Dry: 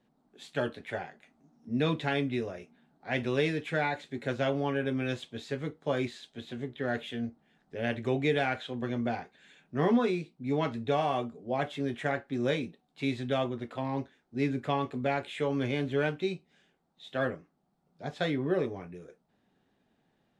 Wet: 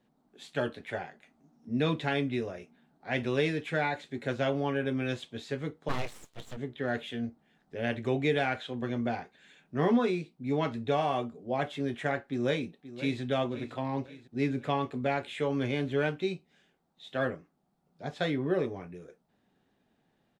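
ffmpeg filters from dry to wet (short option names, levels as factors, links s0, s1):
-filter_complex "[0:a]asplit=3[s0][s1][s2];[s0]afade=t=out:st=5.88:d=0.02[s3];[s1]aeval=exprs='abs(val(0))':c=same,afade=t=in:st=5.88:d=0.02,afade=t=out:st=6.56:d=0.02[s4];[s2]afade=t=in:st=6.56:d=0.02[s5];[s3][s4][s5]amix=inputs=3:normalize=0,asplit=2[s6][s7];[s7]afade=t=in:st=12.28:d=0.01,afade=t=out:st=13.21:d=0.01,aecho=0:1:530|1060|1590|2120|2650:0.211349|0.105674|0.0528372|0.0264186|0.0132093[s8];[s6][s8]amix=inputs=2:normalize=0"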